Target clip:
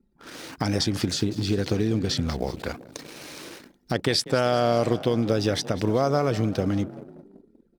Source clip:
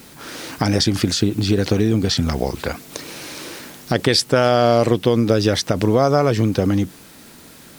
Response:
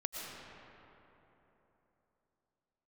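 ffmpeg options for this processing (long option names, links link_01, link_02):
-filter_complex "[0:a]asplit=7[link_01][link_02][link_03][link_04][link_05][link_06][link_07];[link_02]adelay=192,afreqshift=30,volume=-17dB[link_08];[link_03]adelay=384,afreqshift=60,volume=-20.9dB[link_09];[link_04]adelay=576,afreqshift=90,volume=-24.8dB[link_10];[link_05]adelay=768,afreqshift=120,volume=-28.6dB[link_11];[link_06]adelay=960,afreqshift=150,volume=-32.5dB[link_12];[link_07]adelay=1152,afreqshift=180,volume=-36.4dB[link_13];[link_01][link_08][link_09][link_10][link_11][link_12][link_13]amix=inputs=7:normalize=0,anlmdn=10,volume=-7dB"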